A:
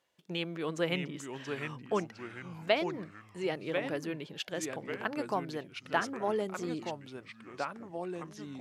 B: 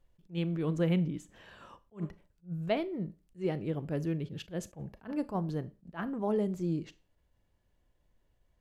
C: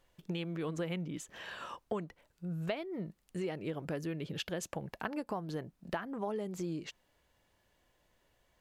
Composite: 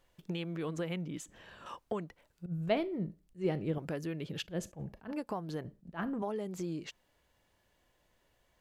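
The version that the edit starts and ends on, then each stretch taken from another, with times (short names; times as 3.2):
C
1.26–1.66 from B
2.46–3.78 from B
4.44–5.13 from B, crossfade 0.10 s
5.65–6.22 from B
not used: A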